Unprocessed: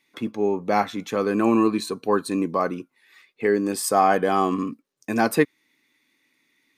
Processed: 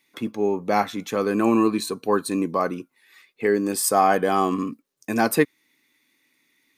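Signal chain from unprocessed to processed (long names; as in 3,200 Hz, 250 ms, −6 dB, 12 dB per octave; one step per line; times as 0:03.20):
high-shelf EQ 8,600 Hz +8 dB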